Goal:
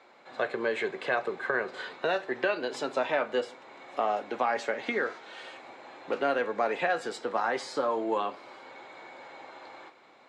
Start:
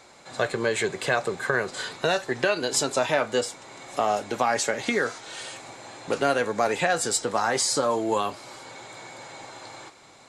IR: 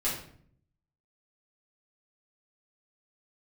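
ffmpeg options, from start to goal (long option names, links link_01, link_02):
-filter_complex "[0:a]acrossover=split=210 3600:gain=0.1 1 0.0708[link_01][link_02][link_03];[link_01][link_02][link_03]amix=inputs=3:normalize=0,asplit=2[link_04][link_05];[1:a]atrim=start_sample=2205,asetrate=43659,aresample=44100[link_06];[link_05][link_06]afir=irnorm=-1:irlink=0,volume=-22dB[link_07];[link_04][link_07]amix=inputs=2:normalize=0,volume=-4.5dB"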